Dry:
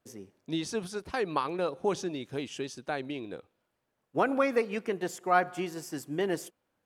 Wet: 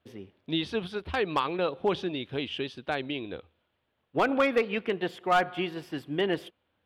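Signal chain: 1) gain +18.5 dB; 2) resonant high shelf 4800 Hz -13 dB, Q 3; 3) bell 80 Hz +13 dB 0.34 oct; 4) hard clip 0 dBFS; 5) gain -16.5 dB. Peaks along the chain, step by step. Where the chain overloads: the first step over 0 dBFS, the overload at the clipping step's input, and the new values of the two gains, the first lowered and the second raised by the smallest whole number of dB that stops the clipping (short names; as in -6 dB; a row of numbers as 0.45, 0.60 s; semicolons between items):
+7.5, +9.0, +9.0, 0.0, -16.5 dBFS; step 1, 9.0 dB; step 1 +9.5 dB, step 5 -7.5 dB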